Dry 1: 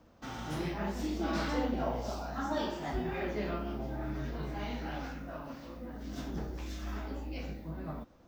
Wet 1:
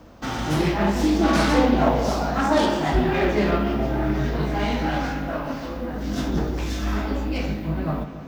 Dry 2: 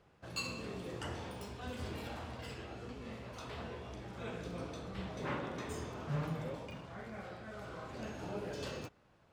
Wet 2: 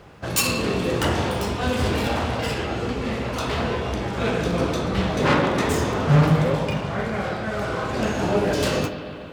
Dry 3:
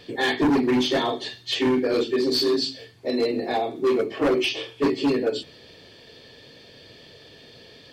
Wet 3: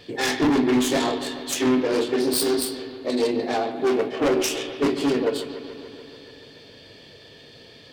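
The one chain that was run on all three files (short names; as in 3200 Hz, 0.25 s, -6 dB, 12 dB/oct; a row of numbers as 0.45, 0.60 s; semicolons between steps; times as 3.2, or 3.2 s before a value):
self-modulated delay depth 0.14 ms; resonator 51 Hz, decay 0.23 s, mix 50%; analogue delay 0.144 s, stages 4096, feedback 73%, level -12.5 dB; match loudness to -23 LUFS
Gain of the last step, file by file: +17.0, +23.0, +3.0 dB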